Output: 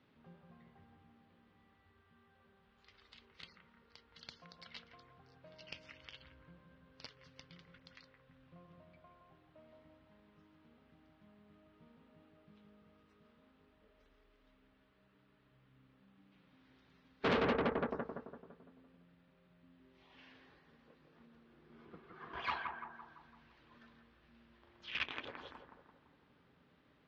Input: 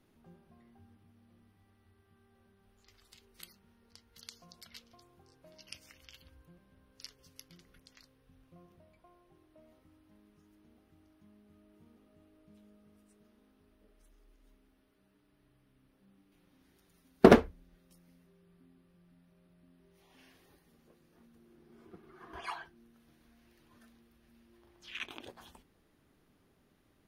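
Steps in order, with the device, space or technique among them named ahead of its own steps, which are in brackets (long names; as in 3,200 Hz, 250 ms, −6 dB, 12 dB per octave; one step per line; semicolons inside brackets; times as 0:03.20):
analogue delay pedal into a guitar amplifier (bucket-brigade delay 169 ms, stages 2,048, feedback 51%, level −5 dB; tube saturation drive 34 dB, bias 0.75; loudspeaker in its box 83–4,100 Hz, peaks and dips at 95 Hz −9 dB, 200 Hz −6 dB, 350 Hz −10 dB, 710 Hz −5 dB)
level +7.5 dB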